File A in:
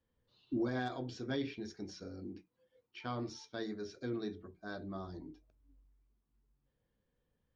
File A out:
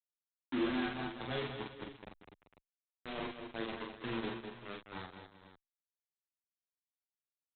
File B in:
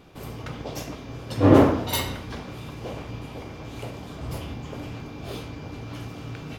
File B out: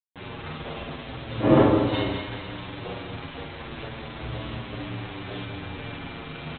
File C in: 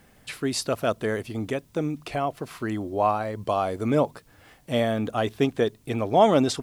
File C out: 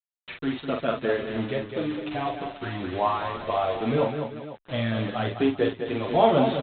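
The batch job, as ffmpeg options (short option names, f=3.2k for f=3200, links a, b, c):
-filter_complex "[0:a]aresample=8000,acrusher=bits=5:mix=0:aa=0.000001,aresample=44100,aecho=1:1:44|205|245|390|497:0.596|0.422|0.188|0.158|0.188,asplit=2[a][b];[b]adelay=8,afreqshift=-0.36[c];[a][c]amix=inputs=2:normalize=1"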